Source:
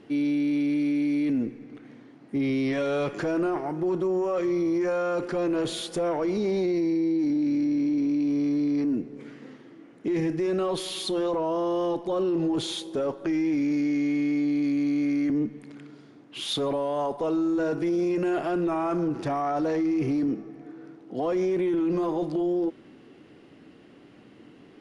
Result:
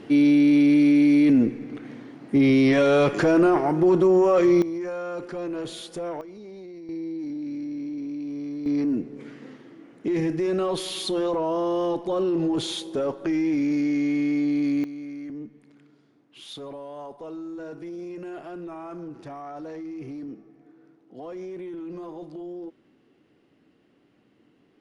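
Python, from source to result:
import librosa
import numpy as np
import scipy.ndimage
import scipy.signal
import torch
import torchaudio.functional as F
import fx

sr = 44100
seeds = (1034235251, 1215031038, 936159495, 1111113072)

y = fx.gain(x, sr, db=fx.steps((0.0, 8.0), (4.62, -5.0), (6.21, -16.0), (6.89, -7.5), (8.66, 1.5), (14.84, -11.0)))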